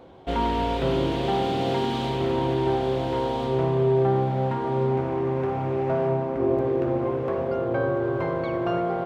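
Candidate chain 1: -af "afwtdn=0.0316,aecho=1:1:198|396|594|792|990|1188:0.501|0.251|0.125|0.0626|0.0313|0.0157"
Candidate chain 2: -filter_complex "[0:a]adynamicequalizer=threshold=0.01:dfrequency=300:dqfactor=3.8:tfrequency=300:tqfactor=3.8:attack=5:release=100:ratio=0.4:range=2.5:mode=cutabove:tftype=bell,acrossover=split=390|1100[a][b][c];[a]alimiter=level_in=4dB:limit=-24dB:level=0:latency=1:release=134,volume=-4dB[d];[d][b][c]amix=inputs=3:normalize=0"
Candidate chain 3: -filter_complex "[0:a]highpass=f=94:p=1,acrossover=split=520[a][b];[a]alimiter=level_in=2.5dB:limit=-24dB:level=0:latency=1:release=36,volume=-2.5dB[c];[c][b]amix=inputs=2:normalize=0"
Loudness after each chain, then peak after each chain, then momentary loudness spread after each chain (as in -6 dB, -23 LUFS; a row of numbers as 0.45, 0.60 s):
-24.0, -27.5, -28.0 LUFS; -10.5, -14.5, -15.5 dBFS; 7, 2, 2 LU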